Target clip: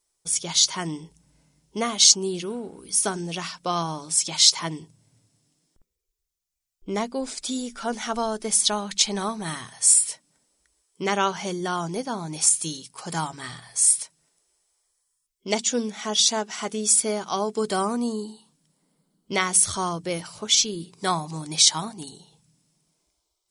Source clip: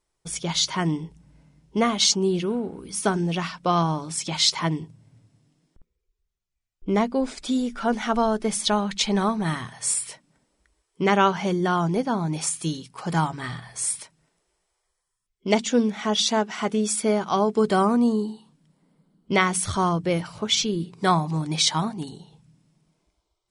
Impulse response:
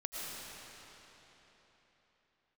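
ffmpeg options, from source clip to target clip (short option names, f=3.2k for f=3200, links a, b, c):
-af "bass=f=250:g=-5,treble=f=4k:g=13,volume=-4dB"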